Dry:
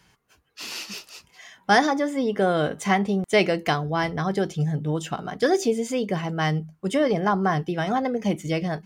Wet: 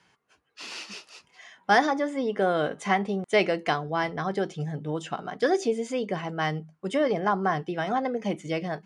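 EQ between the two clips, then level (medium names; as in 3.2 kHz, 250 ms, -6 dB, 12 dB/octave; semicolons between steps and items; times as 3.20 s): high-pass 300 Hz 6 dB/octave; steep low-pass 11 kHz 72 dB/octave; treble shelf 4.7 kHz -9 dB; -1.0 dB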